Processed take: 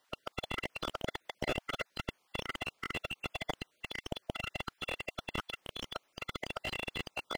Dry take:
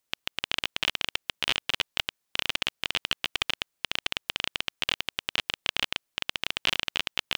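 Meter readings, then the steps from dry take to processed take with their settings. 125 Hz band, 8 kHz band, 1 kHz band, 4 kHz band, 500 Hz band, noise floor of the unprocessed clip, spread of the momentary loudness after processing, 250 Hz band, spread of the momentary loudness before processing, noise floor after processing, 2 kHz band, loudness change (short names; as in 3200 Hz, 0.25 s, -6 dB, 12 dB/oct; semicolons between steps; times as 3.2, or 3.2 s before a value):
+2.5 dB, -11.5 dB, -3.5 dB, -14.5 dB, +1.5 dB, -80 dBFS, 5 LU, +1.5 dB, 4 LU, -76 dBFS, -9.5 dB, -10.5 dB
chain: random spectral dropouts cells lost 26%; overdrive pedal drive 23 dB, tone 1200 Hz, clips at -7.5 dBFS; slew limiter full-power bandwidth 36 Hz; gain +2 dB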